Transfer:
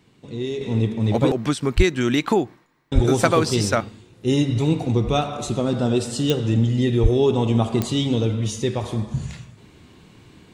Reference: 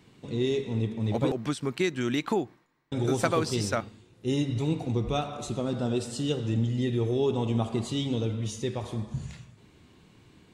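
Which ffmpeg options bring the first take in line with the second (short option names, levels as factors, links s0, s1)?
-filter_complex "[0:a]adeclick=t=4,asplit=3[s0][s1][s2];[s0]afade=t=out:st=1.76:d=0.02[s3];[s1]highpass=f=140:w=0.5412,highpass=f=140:w=1.3066,afade=t=in:st=1.76:d=0.02,afade=t=out:st=1.88:d=0.02[s4];[s2]afade=t=in:st=1.88:d=0.02[s5];[s3][s4][s5]amix=inputs=3:normalize=0,asplit=3[s6][s7][s8];[s6]afade=t=out:st=2.94:d=0.02[s9];[s7]highpass=f=140:w=0.5412,highpass=f=140:w=1.3066,afade=t=in:st=2.94:d=0.02,afade=t=out:st=3.06:d=0.02[s10];[s8]afade=t=in:st=3.06:d=0.02[s11];[s9][s10][s11]amix=inputs=3:normalize=0,asplit=3[s12][s13][s14];[s12]afade=t=out:st=7.02:d=0.02[s15];[s13]highpass=f=140:w=0.5412,highpass=f=140:w=1.3066,afade=t=in:st=7.02:d=0.02,afade=t=out:st=7.14:d=0.02[s16];[s14]afade=t=in:st=7.14:d=0.02[s17];[s15][s16][s17]amix=inputs=3:normalize=0,asetnsamples=n=441:p=0,asendcmd='0.61 volume volume -8dB',volume=1"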